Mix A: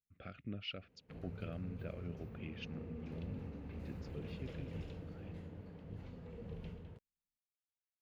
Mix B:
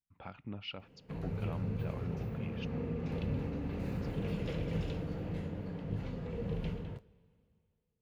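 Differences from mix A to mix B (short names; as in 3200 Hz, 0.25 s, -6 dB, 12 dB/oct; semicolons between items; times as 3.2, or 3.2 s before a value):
speech: remove Butterworth band-stop 920 Hz, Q 1.5; second sound +8.5 dB; reverb: on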